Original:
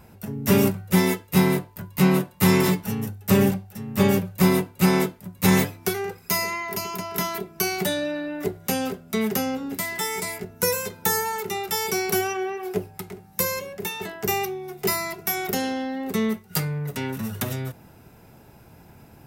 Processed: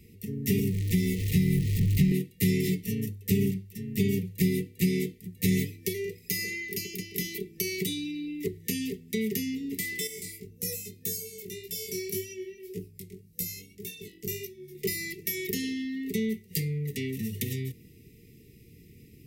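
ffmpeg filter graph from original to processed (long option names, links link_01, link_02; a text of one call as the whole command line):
ffmpeg -i in.wav -filter_complex "[0:a]asettb=1/sr,asplit=3[link_01][link_02][link_03];[link_01]atrim=end=0.594[link_04];[link_02]atrim=start=0.59:end=2.12,asetpts=PTS-STARTPTS,afade=type=in:duration=0.004:curve=qsin,afade=type=out:start_time=1.526:duration=0.004:curve=qsin,aeval=exprs='val(0)+0.5*0.0501*sgn(val(0))':channel_layout=same,asubboost=boost=12:cutoff=170,acrossover=split=150|340|6800[link_05][link_06][link_07][link_08];[link_05]acompressor=threshold=-21dB:ratio=3[link_09];[link_06]acompressor=threshold=-24dB:ratio=3[link_10];[link_07]acompressor=threshold=-29dB:ratio=3[link_11];[link_08]acompressor=threshold=-35dB:ratio=3[link_12];[link_09][link_10][link_11][link_12]amix=inputs=4:normalize=0[link_13];[link_03]atrim=start=2.116[link_14];[link_04][link_13]acrossfade=duration=0.004:curve1=hsin:curve2=qsin[link_15];[link_15][link_14]acrossfade=duration=0.004:curve1=qsin:curve2=hsin,asettb=1/sr,asplit=3[link_16][link_17][link_18];[link_16]atrim=end=10.074[link_19];[link_17]atrim=start=10.07:end=14.75,asetpts=PTS-STARTPTS,afade=type=in:duration=0.004:curve=qsin,afade=type=out:start_time=4.676:duration=0.004:curve=qsin,flanger=delay=17:depth=4.8:speed=1.8,equalizer=frequency=1200:width=0.47:gain=-12[link_20];[link_18]atrim=start=14.746[link_21];[link_19][link_20]acrossfade=duration=0.004:curve1=hsin:curve2=qsin[link_22];[link_22][link_21]acrossfade=duration=0.004:curve1=qsin:curve2=hsin,afftfilt=real='re*(1-between(b*sr/4096,490,1800))':imag='im*(1-between(b*sr/4096,490,1800))':win_size=4096:overlap=0.75,acrossover=split=170[link_23][link_24];[link_24]acompressor=threshold=-24dB:ratio=6[link_25];[link_23][link_25]amix=inputs=2:normalize=0,volume=-3dB" out.wav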